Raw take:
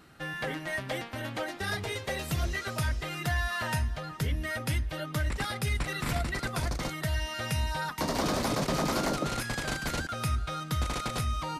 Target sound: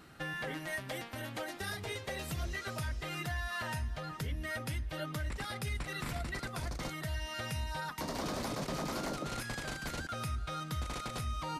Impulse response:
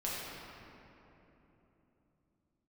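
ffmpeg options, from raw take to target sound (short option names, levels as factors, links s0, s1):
-filter_complex "[0:a]asettb=1/sr,asplit=3[s0][s1][s2];[s0]atrim=end=0.554[s3];[s1]atrim=start=0.55:end=1.84,asetpts=PTS-STARTPTS,afade=t=in:d=0.004:c=qsin,afade=t=out:st=1.286:d=0.004:c=qsin,highshelf=f=7700:g=8.5[s4];[s2]atrim=start=1.836[s5];[s3][s4]acrossfade=d=0.004:c1=hsin:c2=qsin[s6];[s6][s5]acrossfade=d=0.004:c1=qsin:c2=hsin,alimiter=level_in=1.68:limit=0.0631:level=0:latency=1:release=458,volume=0.596"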